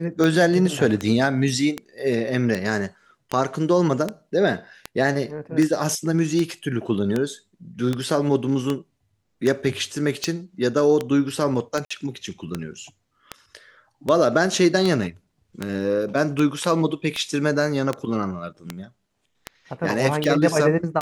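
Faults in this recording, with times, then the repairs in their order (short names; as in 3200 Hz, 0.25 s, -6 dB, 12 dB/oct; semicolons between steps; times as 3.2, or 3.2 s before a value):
tick 78 rpm -10 dBFS
11.85–11.9 gap 55 ms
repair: de-click; interpolate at 11.85, 55 ms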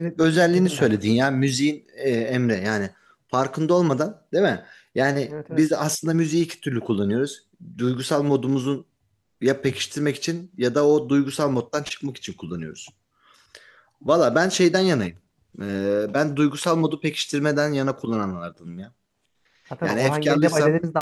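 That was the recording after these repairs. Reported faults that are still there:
none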